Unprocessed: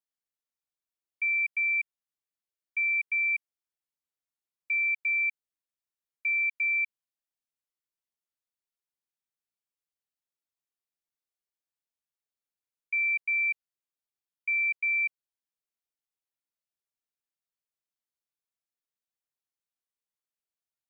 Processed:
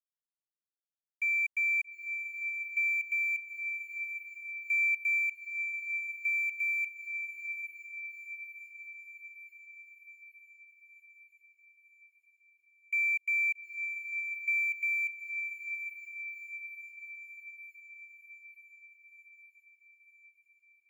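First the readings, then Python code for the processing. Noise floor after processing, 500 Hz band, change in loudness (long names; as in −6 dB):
below −85 dBFS, can't be measured, −4.5 dB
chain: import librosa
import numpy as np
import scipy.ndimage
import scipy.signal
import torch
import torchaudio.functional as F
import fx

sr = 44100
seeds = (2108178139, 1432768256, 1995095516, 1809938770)

p1 = fx.notch(x, sr, hz=2200.0, q=25.0)
p2 = fx.rider(p1, sr, range_db=10, speed_s=0.5)
p3 = np.sign(p2) * np.maximum(np.abs(p2) - 10.0 ** (-52.5 / 20.0), 0.0)
y = p3 + fx.echo_diffused(p3, sr, ms=849, feedback_pct=61, wet_db=-7.0, dry=0)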